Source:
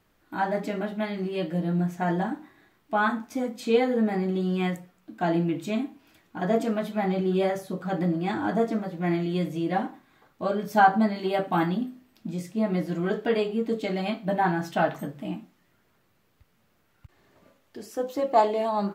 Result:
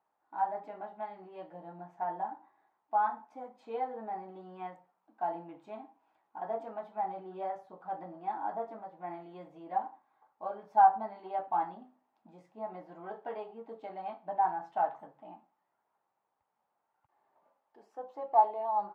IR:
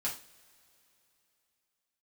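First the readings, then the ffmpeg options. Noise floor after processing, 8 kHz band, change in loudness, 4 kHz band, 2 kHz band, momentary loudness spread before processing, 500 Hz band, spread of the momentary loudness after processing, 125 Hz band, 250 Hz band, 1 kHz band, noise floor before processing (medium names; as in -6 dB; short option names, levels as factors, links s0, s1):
-82 dBFS, no reading, -7.5 dB, under -25 dB, -17.0 dB, 12 LU, -12.5 dB, 19 LU, -27.5 dB, -24.5 dB, -2.5 dB, -67 dBFS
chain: -af "bandpass=f=850:t=q:w=5.2:csg=0"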